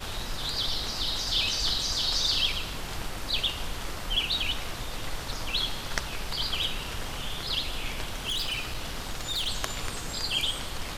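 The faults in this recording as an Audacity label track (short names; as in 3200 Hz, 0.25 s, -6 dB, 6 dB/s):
8.120000	9.490000	clipped -26.5 dBFS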